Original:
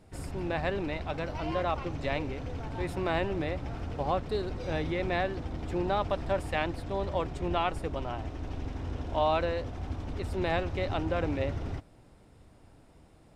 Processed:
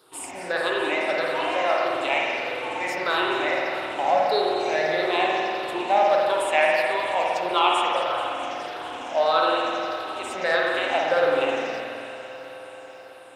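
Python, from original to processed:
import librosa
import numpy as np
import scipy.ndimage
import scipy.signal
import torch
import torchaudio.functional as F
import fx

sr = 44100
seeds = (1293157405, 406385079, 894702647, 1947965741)

p1 = fx.spec_ripple(x, sr, per_octave=0.61, drift_hz=-1.6, depth_db=14)
p2 = scipy.signal.sosfilt(scipy.signal.butter(2, 570.0, 'highpass', fs=sr, output='sos'), p1)
p3 = fx.high_shelf(p2, sr, hz=4300.0, db=6.5)
p4 = p3 + fx.echo_alternate(p3, sr, ms=108, hz=1800.0, feedback_pct=89, wet_db=-12.5, dry=0)
p5 = fx.rev_spring(p4, sr, rt60_s=2.2, pass_ms=(50,), chirp_ms=60, drr_db=-2.5)
y = F.gain(torch.from_numpy(p5), 5.0).numpy()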